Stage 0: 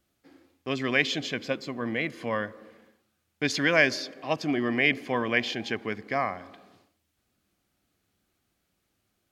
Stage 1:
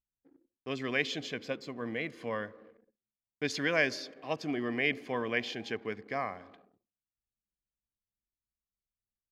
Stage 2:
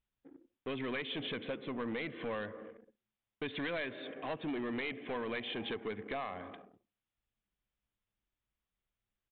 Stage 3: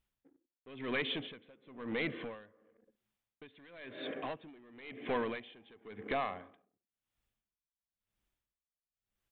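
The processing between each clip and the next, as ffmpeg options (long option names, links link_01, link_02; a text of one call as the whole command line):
ffmpeg -i in.wav -af "anlmdn=0.00158,equalizer=frequency=450:width=7.3:gain=5.5,volume=-7dB" out.wav
ffmpeg -i in.wav -af "acompressor=threshold=-37dB:ratio=6,aresample=8000,asoftclip=type=tanh:threshold=-39.5dB,aresample=44100,volume=7dB" out.wav
ffmpeg -i in.wav -af "aeval=exprs='val(0)*pow(10,-26*(0.5-0.5*cos(2*PI*0.97*n/s))/20)':channel_layout=same,volume=5dB" out.wav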